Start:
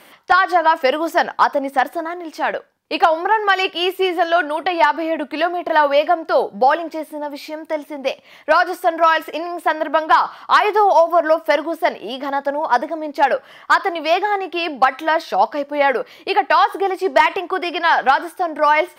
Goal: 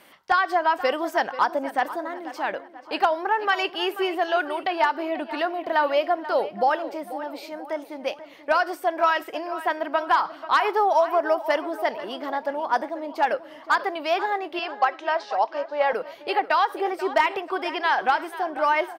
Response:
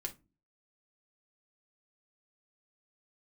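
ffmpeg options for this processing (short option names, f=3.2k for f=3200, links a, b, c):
-filter_complex "[0:a]asettb=1/sr,asplit=3[a][b][c];[a]atrim=end=14.594[d];[b]atrim=start=14.59:end=15.93,asetpts=PTS-STARTPTS,afade=t=in:d=0.004:c=qsin,afade=t=out:st=1.336:d=0.004:c=qsin,highpass=490,equalizer=f=560:t=q:w=4:g=4,equalizer=f=2.1k:t=q:w=4:g=-4,equalizer=f=3.8k:t=q:w=4:g=-4,lowpass=f=6.5k:w=0.5412,lowpass=f=6.5k:w=1.3066[e];[c]atrim=start=15.926[f];[d][e]acrossfade=d=0.004:c1=hsin:c2=qsin[g];[g][f]acrossfade=d=0.004:c1=qsin:c2=hsin,asplit=2[h][i];[i]adelay=487,lowpass=f=4k:p=1,volume=-14dB,asplit=2[j][k];[k]adelay=487,lowpass=f=4k:p=1,volume=0.48,asplit=2[l][m];[m]adelay=487,lowpass=f=4k:p=1,volume=0.48,asplit=2[n][o];[o]adelay=487,lowpass=f=4k:p=1,volume=0.48,asplit=2[p][q];[q]adelay=487,lowpass=f=4k:p=1,volume=0.48[r];[j][l][n][p][r]amix=inputs=5:normalize=0[s];[h][s]amix=inputs=2:normalize=0,volume=-7dB"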